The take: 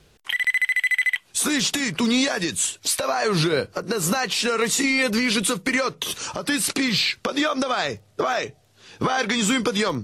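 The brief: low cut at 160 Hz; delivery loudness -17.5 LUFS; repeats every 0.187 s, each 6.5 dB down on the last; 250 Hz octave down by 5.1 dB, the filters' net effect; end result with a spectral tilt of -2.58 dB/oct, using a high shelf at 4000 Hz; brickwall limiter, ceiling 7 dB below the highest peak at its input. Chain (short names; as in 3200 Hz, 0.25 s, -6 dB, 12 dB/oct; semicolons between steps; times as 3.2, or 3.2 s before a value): HPF 160 Hz; bell 250 Hz -5 dB; high shelf 4000 Hz -8 dB; limiter -17.5 dBFS; feedback echo 0.187 s, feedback 47%, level -6.5 dB; gain +8.5 dB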